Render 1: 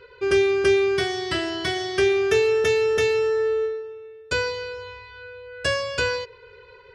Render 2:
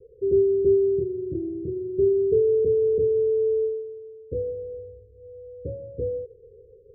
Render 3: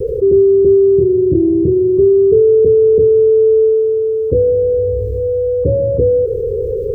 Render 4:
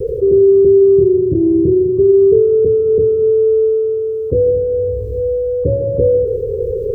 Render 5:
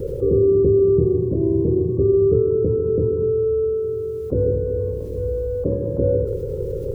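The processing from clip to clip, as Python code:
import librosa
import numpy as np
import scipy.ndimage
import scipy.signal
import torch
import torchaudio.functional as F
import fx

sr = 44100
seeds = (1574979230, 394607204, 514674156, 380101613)

y1 = scipy.signal.sosfilt(scipy.signal.butter(16, 520.0, 'lowpass', fs=sr, output='sos'), x)
y2 = fx.env_flatten(y1, sr, amount_pct=70)
y2 = y2 * librosa.db_to_amplitude(8.5)
y3 = fx.rev_gated(y2, sr, seeds[0], gate_ms=280, shape='flat', drr_db=8.0)
y3 = y3 * librosa.db_to_amplitude(-1.5)
y4 = fx.spec_clip(y3, sr, under_db=17)
y4 = y4 * librosa.db_to_amplitude(-6.0)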